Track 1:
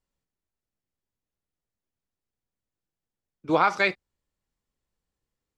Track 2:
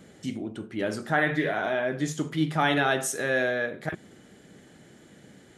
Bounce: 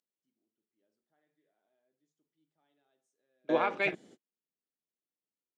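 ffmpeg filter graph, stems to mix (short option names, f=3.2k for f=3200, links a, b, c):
-filter_complex "[0:a]agate=range=-13dB:threshold=-35dB:ratio=16:detection=peak,highshelf=f=3.8k:t=q:w=3:g=-11.5,volume=-4dB,asplit=2[a][b];[1:a]volume=-2.5dB[c];[b]apad=whole_len=245981[d];[c][d]sidechaingate=range=-46dB:threshold=-56dB:ratio=16:detection=peak[e];[a][e]amix=inputs=2:normalize=0,highpass=270,lowpass=7k,equalizer=f=1.6k:t=o:w=1.8:g=-10.5"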